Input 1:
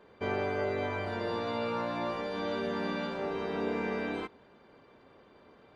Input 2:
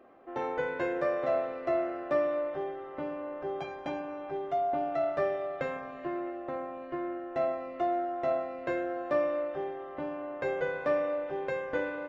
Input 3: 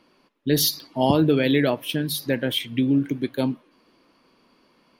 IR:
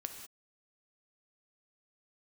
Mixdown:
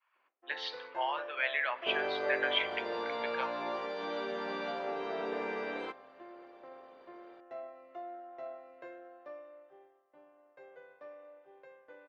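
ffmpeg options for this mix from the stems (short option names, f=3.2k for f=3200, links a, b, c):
-filter_complex "[0:a]equalizer=f=96:w=2.5:g=-8.5,adelay=1650,volume=-2dB[a];[1:a]adelay=150,volume=-15dB,afade=t=out:st=8.73:d=0.78:silence=0.421697,asplit=2[b][c];[c]volume=-22dB[d];[2:a]lowpass=f=2.5k:w=0.5412,lowpass=f=2.5k:w=1.3066,acompressor=threshold=-21dB:ratio=6,highpass=f=1k:w=0.5412,highpass=f=1k:w=1.3066,volume=2dB,asplit=2[e][f];[f]volume=-9dB[g];[3:a]atrim=start_sample=2205[h];[d][g]amix=inputs=2:normalize=0[i];[i][h]afir=irnorm=-1:irlink=0[j];[a][b][e][j]amix=inputs=4:normalize=0,lowshelf=f=430:g=2.5,agate=range=-33dB:threshold=-55dB:ratio=3:detection=peak,acrossover=split=350 7100:gain=0.158 1 0.0708[k][l][m];[k][l][m]amix=inputs=3:normalize=0"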